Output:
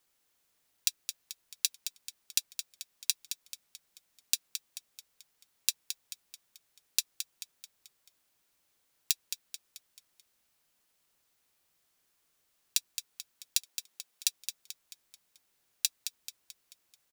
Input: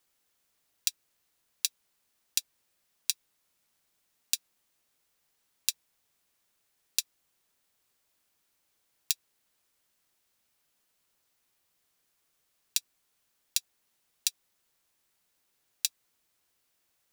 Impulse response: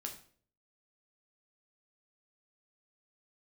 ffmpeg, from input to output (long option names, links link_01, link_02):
-filter_complex "[0:a]asettb=1/sr,asplit=3[link_01][link_02][link_03];[link_01]atrim=end=13.584[link_04];[link_02]atrim=start=13.58:end=14.27,asetpts=PTS-STARTPTS,afade=type=in:duration=0.004:curve=qsin,afade=type=out:start_time=0.686:duration=0.004:curve=qsin,highpass=210[link_05];[link_03]atrim=start=14.266[link_06];[link_04][link_05]acrossfade=duration=0.004:curve1=hsin:curve2=qsin[link_07];[link_07][link_06]acrossfade=duration=0.004:curve1=qsin:curve2=hsin,asplit=6[link_08][link_09][link_10][link_11][link_12][link_13];[link_09]adelay=218,afreqshift=-48,volume=-9dB[link_14];[link_10]adelay=436,afreqshift=-96,volume=-15.4dB[link_15];[link_11]adelay=654,afreqshift=-144,volume=-21.8dB[link_16];[link_12]adelay=872,afreqshift=-192,volume=-28.1dB[link_17];[link_13]adelay=1090,afreqshift=-240,volume=-34.5dB[link_18];[link_08][link_14][link_15][link_16][link_17][link_18]amix=inputs=6:normalize=0"